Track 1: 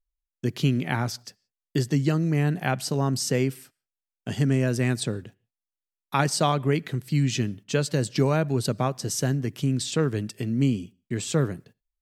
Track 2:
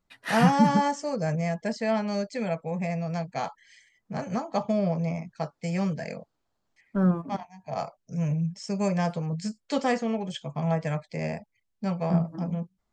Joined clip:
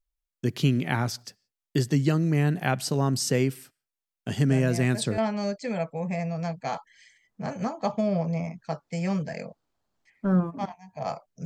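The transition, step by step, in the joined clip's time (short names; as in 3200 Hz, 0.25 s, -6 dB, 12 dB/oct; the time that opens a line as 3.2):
track 1
4.49 add track 2 from 1.2 s 0.69 s -8 dB
5.18 switch to track 2 from 1.89 s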